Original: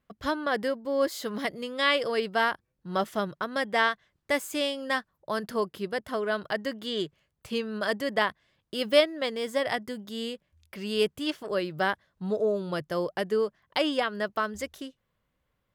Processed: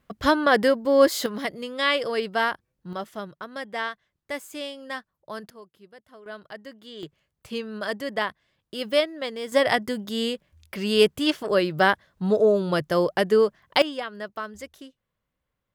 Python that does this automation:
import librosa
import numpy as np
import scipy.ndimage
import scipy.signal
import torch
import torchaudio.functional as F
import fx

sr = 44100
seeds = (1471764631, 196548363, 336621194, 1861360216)

y = fx.gain(x, sr, db=fx.steps((0.0, 9.0), (1.26, 1.5), (2.93, -5.5), (5.5, -18.0), (6.26, -10.0), (7.03, -1.0), (9.52, 7.5), (13.82, -4.5)))